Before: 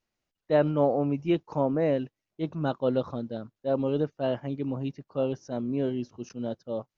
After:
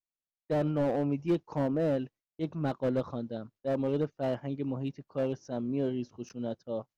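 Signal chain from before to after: gate with hold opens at -47 dBFS; slew-rate limiter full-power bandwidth 38 Hz; trim -2.5 dB

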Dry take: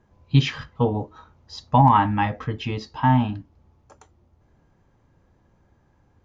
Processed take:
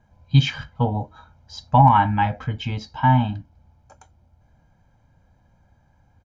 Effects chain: comb 1.3 ms, depth 68%; trim -1 dB

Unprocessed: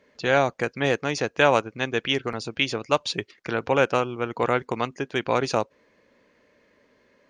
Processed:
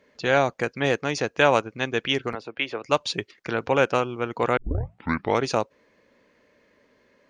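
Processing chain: 2.35–2.84 s: three-band isolator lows -13 dB, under 330 Hz, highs -21 dB, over 3.1 kHz; 4.57 s: tape start 0.85 s

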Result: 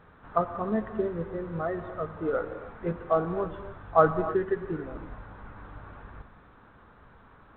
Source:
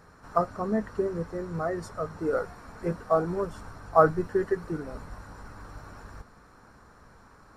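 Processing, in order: on a send at -10 dB: reverberation, pre-delay 77 ms; on the sum: trim -1 dB; A-law 64 kbps 8 kHz

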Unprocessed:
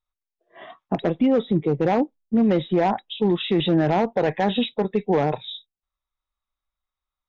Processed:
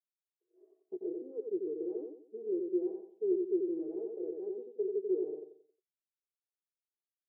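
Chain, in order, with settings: comb 6.3 ms, depth 51%; on a send: feedback delay 89 ms, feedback 36%, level -4.5 dB; on the sum: valve stage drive 14 dB, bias 0.65; Butterworth band-pass 390 Hz, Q 7

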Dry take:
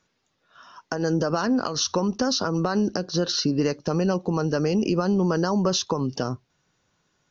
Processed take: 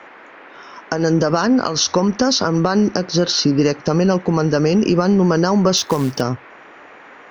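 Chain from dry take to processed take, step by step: band noise 240–2100 Hz -49 dBFS; 5.77–6.21 s: short-mantissa float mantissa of 2-bit; trim +7.5 dB

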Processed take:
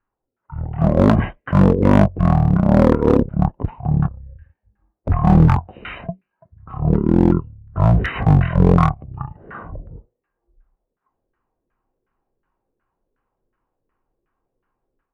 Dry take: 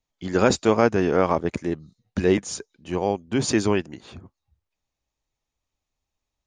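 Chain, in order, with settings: level rider gain up to 6 dB; LFO low-pass saw down 6.4 Hz 960–3500 Hz; speed mistake 78 rpm record played at 33 rpm; one-sided clip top -16 dBFS, bottom -5 dBFS; trim +3.5 dB

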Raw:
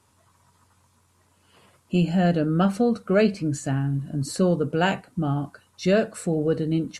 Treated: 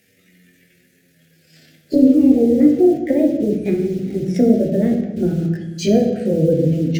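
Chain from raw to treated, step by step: pitch bend over the whole clip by +11.5 st ending unshifted; low-pass that closes with the level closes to 530 Hz, closed at -21 dBFS; bass shelf 370 Hz -3.5 dB; in parallel at -11 dB: bit crusher 7-bit; on the sum: Butterworth band-stop 990 Hz, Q 0.83; on a send at -2.5 dB: reverberation RT60 1.1 s, pre-delay 3 ms; on the sum: trim +8 dB

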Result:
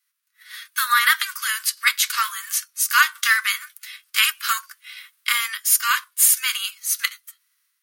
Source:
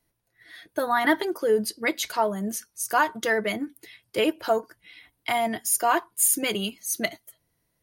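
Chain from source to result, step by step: formants flattened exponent 0.6; steep high-pass 1.1 kHz 96 dB/octave; level rider gain up to 11 dB

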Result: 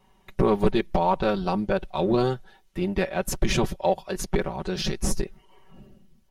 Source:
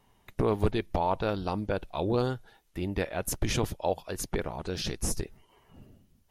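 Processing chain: peaking EQ 13 kHz -6 dB 1.2 oct; comb 5.3 ms, depth 87%; in parallel at -10 dB: hysteresis with a dead band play -29 dBFS; on the sum: trim +1.5 dB

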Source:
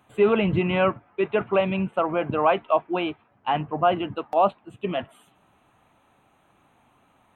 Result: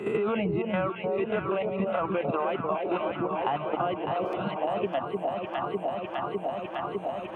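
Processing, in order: reverse spectral sustain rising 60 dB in 0.39 s; reverb removal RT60 1.5 s; level held to a coarse grid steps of 13 dB; low-pass 2.1 kHz 6 dB/octave; bass shelf 71 Hz -11.5 dB; echo whose repeats swap between lows and highs 302 ms, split 850 Hz, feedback 79%, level -4 dB; spectral replace 4.26–4.52 s, 240–1300 Hz; three bands compressed up and down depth 100%

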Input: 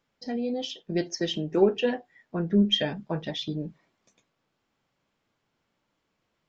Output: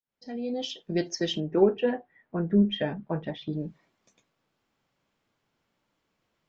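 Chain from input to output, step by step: fade-in on the opening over 0.62 s; 1.40–3.53 s: low-pass 1.9 kHz 12 dB/octave

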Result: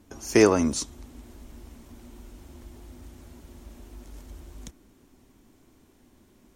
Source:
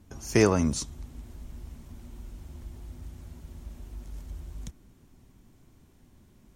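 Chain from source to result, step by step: resonant low shelf 210 Hz -7 dB, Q 1.5; trim +3 dB

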